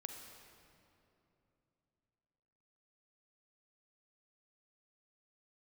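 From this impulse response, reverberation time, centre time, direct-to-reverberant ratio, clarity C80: 3.0 s, 66 ms, 3.5 dB, 5.0 dB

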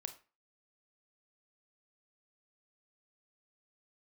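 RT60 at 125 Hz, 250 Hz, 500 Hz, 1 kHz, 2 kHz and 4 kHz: 0.35 s, 0.35 s, 0.30 s, 0.35 s, 0.35 s, 0.25 s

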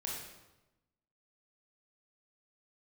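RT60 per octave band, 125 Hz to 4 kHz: 1.3 s, 1.2 s, 1.1 s, 1.0 s, 0.85 s, 0.80 s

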